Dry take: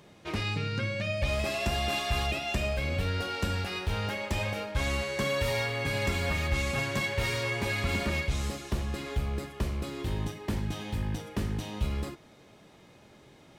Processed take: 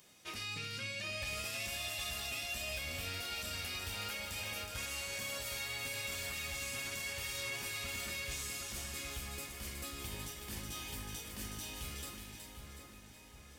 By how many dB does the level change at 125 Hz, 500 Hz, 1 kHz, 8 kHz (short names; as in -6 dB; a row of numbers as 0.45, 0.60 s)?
-17.0, -15.5, -12.0, +2.0 dB